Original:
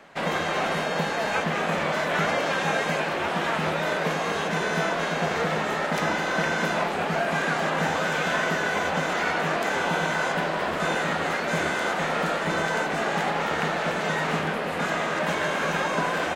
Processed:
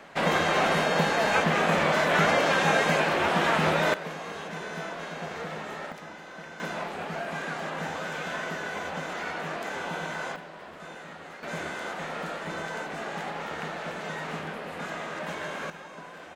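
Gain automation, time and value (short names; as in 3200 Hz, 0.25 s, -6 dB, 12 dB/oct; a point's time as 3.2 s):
+2 dB
from 3.94 s -10.5 dB
from 5.92 s -18 dB
from 6.6 s -8.5 dB
from 10.36 s -17.5 dB
from 11.43 s -9 dB
from 15.7 s -18.5 dB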